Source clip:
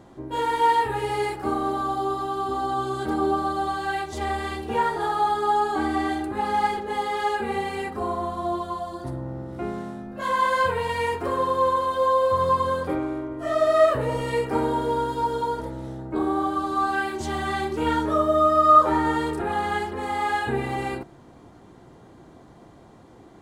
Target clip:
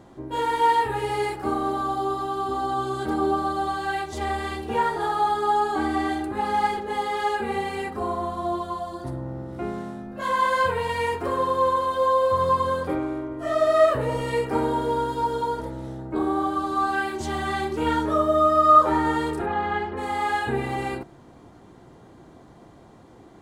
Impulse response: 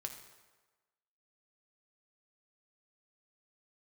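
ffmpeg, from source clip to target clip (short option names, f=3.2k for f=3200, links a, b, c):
-filter_complex "[0:a]asplit=3[a][b][c];[a]afade=t=out:st=19.45:d=0.02[d];[b]lowpass=2.9k,afade=t=in:st=19.45:d=0.02,afade=t=out:st=19.96:d=0.02[e];[c]afade=t=in:st=19.96:d=0.02[f];[d][e][f]amix=inputs=3:normalize=0"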